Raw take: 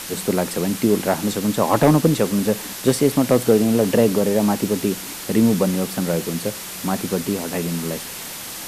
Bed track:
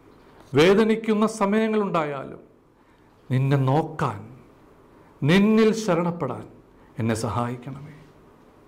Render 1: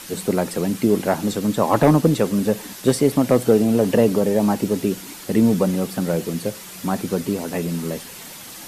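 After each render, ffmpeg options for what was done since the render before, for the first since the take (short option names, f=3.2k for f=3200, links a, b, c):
-af "afftdn=nr=7:nf=-33"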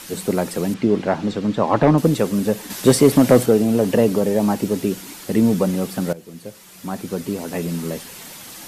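-filter_complex "[0:a]asettb=1/sr,asplit=3[a][b][c];[a]atrim=end=0.744[d];[b]atrim=start=0.74:end=1.98,asetpts=PTS-STARTPTS,afade=t=in:d=0.004:c=qsin,afade=t=out:st=1.236:d=0.004:c=qsin,lowpass=3.9k[e];[c]atrim=start=1.976[f];[d][e]acrossfade=d=0.004:c1=hsin:c2=qsin[g];[g][f]acrossfade=d=0.004:c1=qsin:c2=hsin,asettb=1/sr,asplit=3[h][i][j];[h]atrim=end=2.704[k];[i]atrim=start=2.7:end=3.46,asetpts=PTS-STARTPTS,afade=t=in:d=0.004:c=qsin,afade=t=out:st=0.756:d=0.004:c=qsin,acontrast=49[l];[j]atrim=start=3.456[m];[k][l]acrossfade=d=0.004:c1=hsin:c2=qsin[n];[n][m]acrossfade=d=0.004:c1=qsin:c2=hsin,asplit=2[o][p];[o]atrim=end=6.13,asetpts=PTS-STARTPTS,afade=t=out:st=6.126:d=0.004:c=hsin:silence=0.125893[q];[p]atrim=start=6.13,asetpts=PTS-STARTPTS,afade=t=in:d=1.56:silence=0.125893[r];[q][r]concat=n=2:v=0:a=1"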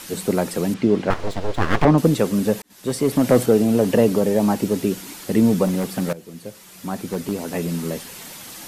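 -filter_complex "[0:a]asettb=1/sr,asplit=3[a][b][c];[a]atrim=end=1.104[d];[b]atrim=start=1.1:end=1.85,asetpts=PTS-STARTPTS,afade=t=in:d=0.004:c=qsin,afade=t=out:st=0.746:d=0.004:c=qsin,aeval=exprs='abs(val(0))':c=same[e];[c]atrim=start=1.846[f];[d][e]acrossfade=d=0.004:c1=hsin:c2=qsin[g];[g][f]acrossfade=d=0.004:c1=qsin:c2=hsin,asettb=1/sr,asplit=3[h][i][j];[h]atrim=end=5.654[k];[i]atrim=start=5.65:end=7.32,asetpts=PTS-STARTPTS,afade=t=in:d=0.004:c=qsin,afade=t=out:st=1.666:d=0.004:c=qsin,aeval=exprs='0.178*(abs(mod(val(0)/0.178+3,4)-2)-1)':c=same[l];[j]atrim=start=7.316[m];[k][l]acrossfade=d=0.004:c1=hsin:c2=qsin[n];[n][m]acrossfade=d=0.004:c1=qsin:c2=hsin,asplit=2[o][p];[o]atrim=end=2.62,asetpts=PTS-STARTPTS,afade=t=out:st=2.616:d=0.004:c=hsin[q];[p]atrim=start=2.62,asetpts=PTS-STARTPTS,afade=t=in:d=0.97[r];[q][r]concat=n=2:v=0:a=1"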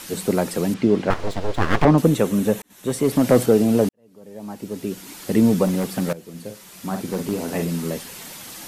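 -filter_complex "[0:a]asettb=1/sr,asplit=3[a][b][c];[a]atrim=end=2.024[d];[b]atrim=start=2.02:end=3.04,asetpts=PTS-STARTPTS,afade=t=in:d=0.004:c=qsin,afade=t=out:st=1.016:d=0.004:c=qsin,equalizer=f=4.8k:t=o:w=0.21:g=-11[e];[c]atrim=start=3.036[f];[d][e]acrossfade=d=0.004:c1=hsin:c2=qsin[g];[g][f]acrossfade=d=0.004:c1=qsin:c2=hsin,asettb=1/sr,asplit=3[h][i][j];[h]atrim=end=6.304[k];[i]atrim=start=6.3:end=7.65,asetpts=PTS-STARTPTS,afade=t=in:d=0.004:c=qsin,afade=t=out:st=1.346:d=0.004:c=qsin,asplit=2[l][m];[m]adelay=47,volume=-6.5dB[n];[l][n]amix=inputs=2:normalize=0,atrim=end_sample=59535[o];[j]atrim=start=7.646[p];[k][o]acrossfade=d=0.004:c1=hsin:c2=qsin[q];[q][p]acrossfade=d=0.004:c1=qsin:c2=hsin,asplit=2[r][s];[r]atrim=end=3.89,asetpts=PTS-STARTPTS,afade=t=out:st=3.886:d=0.004:c=hsin[t];[s]atrim=start=3.89,asetpts=PTS-STARTPTS,afade=t=in:d=1.41:c=qua[u];[t][u]concat=n=2:v=0:a=1"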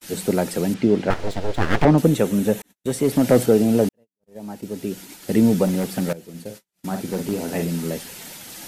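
-af "agate=range=-46dB:threshold=-38dB:ratio=16:detection=peak,equalizer=f=1.1k:w=6.6:g=-8"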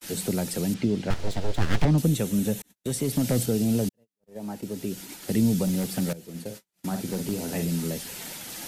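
-filter_complex "[0:a]acrossover=split=190|3000[a][b][c];[b]acompressor=threshold=-34dB:ratio=2.5[d];[a][d][c]amix=inputs=3:normalize=0"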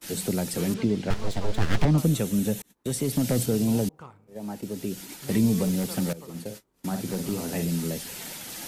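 -filter_complex "[1:a]volume=-20.5dB[a];[0:a][a]amix=inputs=2:normalize=0"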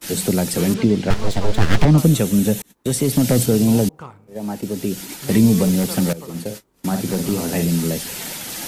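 -af "volume=8.5dB,alimiter=limit=-2dB:level=0:latency=1"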